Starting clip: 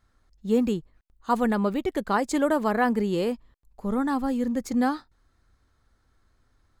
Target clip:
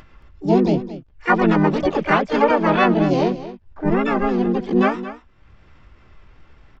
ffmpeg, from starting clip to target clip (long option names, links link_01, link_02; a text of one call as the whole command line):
ffmpeg -i in.wav -filter_complex "[0:a]acompressor=mode=upward:threshold=-44dB:ratio=2.5,aresample=8000,aresample=44100,aecho=1:1:5.1:0.3,asplit=4[link_01][link_02][link_03][link_04];[link_02]asetrate=35002,aresample=44100,atempo=1.25992,volume=-1dB[link_05];[link_03]asetrate=66075,aresample=44100,atempo=0.66742,volume=0dB[link_06];[link_04]asetrate=88200,aresample=44100,atempo=0.5,volume=-8dB[link_07];[link_01][link_05][link_06][link_07]amix=inputs=4:normalize=0,asplit=2[link_08][link_09];[link_09]aecho=0:1:223:0.2[link_10];[link_08][link_10]amix=inputs=2:normalize=0,volume=2dB" out.wav